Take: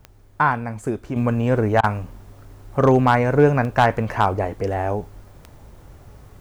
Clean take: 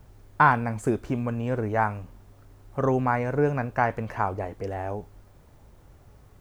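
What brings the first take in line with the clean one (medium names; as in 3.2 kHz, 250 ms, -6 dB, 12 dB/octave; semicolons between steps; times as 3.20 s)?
clip repair -6.5 dBFS; de-click; interpolate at 1.81 s, 23 ms; gain correction -8.5 dB, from 1.16 s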